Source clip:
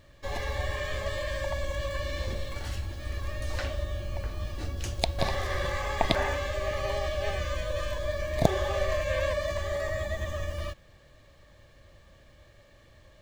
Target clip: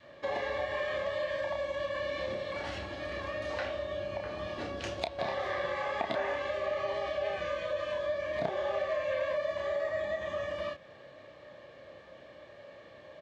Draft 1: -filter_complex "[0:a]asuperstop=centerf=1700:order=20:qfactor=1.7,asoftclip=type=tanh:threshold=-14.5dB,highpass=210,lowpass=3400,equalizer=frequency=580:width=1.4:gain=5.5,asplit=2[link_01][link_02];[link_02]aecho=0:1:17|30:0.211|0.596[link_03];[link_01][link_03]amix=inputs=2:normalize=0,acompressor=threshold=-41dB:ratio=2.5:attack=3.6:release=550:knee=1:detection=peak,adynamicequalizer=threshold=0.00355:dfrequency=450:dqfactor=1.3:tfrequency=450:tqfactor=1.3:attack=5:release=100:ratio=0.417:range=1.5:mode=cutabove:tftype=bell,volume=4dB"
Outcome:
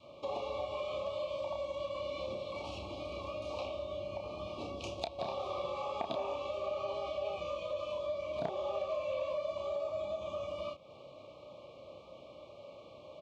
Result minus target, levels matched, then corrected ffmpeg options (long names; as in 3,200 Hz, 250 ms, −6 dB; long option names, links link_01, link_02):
2,000 Hz band −9.0 dB; downward compressor: peak gain reduction +4 dB
-filter_complex "[0:a]asoftclip=type=tanh:threshold=-14.5dB,highpass=210,lowpass=3400,equalizer=frequency=580:width=1.4:gain=5.5,asplit=2[link_01][link_02];[link_02]aecho=0:1:17|30:0.211|0.596[link_03];[link_01][link_03]amix=inputs=2:normalize=0,acompressor=threshold=-34.5dB:ratio=2.5:attack=3.6:release=550:knee=1:detection=peak,adynamicequalizer=threshold=0.00355:dfrequency=450:dqfactor=1.3:tfrequency=450:tqfactor=1.3:attack=5:release=100:ratio=0.417:range=1.5:mode=cutabove:tftype=bell,volume=4dB"